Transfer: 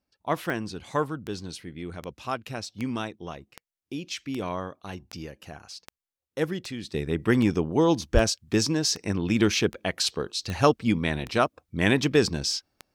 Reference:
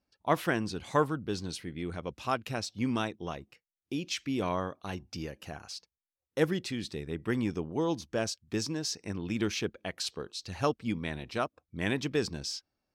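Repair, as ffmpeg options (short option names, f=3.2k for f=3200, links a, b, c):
-filter_complex "[0:a]adeclick=t=4,asplit=3[a][b][c];[a]afade=t=out:st=8.13:d=0.02[d];[b]highpass=f=140:w=0.5412,highpass=f=140:w=1.3066,afade=t=in:st=8.13:d=0.02,afade=t=out:st=8.25:d=0.02[e];[c]afade=t=in:st=8.25:d=0.02[f];[d][e][f]amix=inputs=3:normalize=0,asetnsamples=n=441:p=0,asendcmd='6.94 volume volume -9dB',volume=0dB"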